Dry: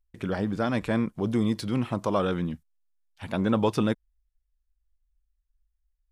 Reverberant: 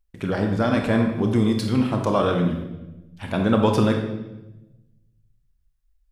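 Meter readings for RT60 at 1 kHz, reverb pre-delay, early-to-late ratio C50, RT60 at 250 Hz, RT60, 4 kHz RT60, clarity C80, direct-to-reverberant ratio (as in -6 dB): 0.90 s, 28 ms, 5.5 dB, 1.4 s, 1.0 s, 0.90 s, 8.0 dB, 3.0 dB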